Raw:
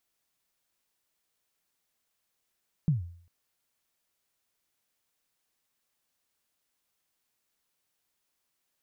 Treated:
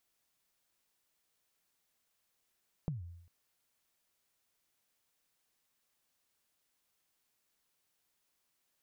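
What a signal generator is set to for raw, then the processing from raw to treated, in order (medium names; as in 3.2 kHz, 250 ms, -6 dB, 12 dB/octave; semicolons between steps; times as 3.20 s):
kick drum length 0.40 s, from 170 Hz, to 86 Hz, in 140 ms, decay 0.55 s, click off, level -18.5 dB
compression 12:1, threshold -36 dBFS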